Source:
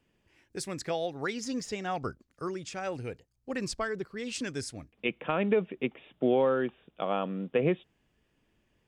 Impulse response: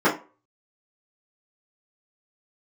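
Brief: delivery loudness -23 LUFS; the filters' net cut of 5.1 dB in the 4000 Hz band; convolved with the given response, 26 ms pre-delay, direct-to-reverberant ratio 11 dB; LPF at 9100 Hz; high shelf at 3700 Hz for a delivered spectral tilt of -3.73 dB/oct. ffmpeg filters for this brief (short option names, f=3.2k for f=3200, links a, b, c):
-filter_complex "[0:a]lowpass=9.1k,highshelf=f=3.7k:g=-3.5,equalizer=f=4k:t=o:g=-4.5,asplit=2[a][b];[1:a]atrim=start_sample=2205,adelay=26[c];[b][c]afir=irnorm=-1:irlink=0,volume=-31dB[d];[a][d]amix=inputs=2:normalize=0,volume=9.5dB"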